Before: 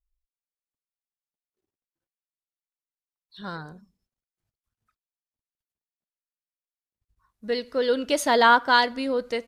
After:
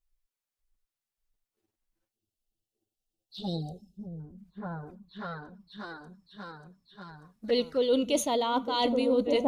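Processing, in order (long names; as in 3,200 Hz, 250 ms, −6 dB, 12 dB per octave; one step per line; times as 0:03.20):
echo whose low-pass opens from repeat to repeat 589 ms, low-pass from 200 Hz, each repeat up 2 octaves, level 0 dB
reversed playback
downward compressor 8 to 1, threshold −28 dBFS, peak gain reduction 16 dB
reversed playback
time-frequency box erased 0:02.11–0:04.20, 840–2,600 Hz
flanger swept by the level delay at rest 9.2 ms, full sweep at −31.5 dBFS
level +7 dB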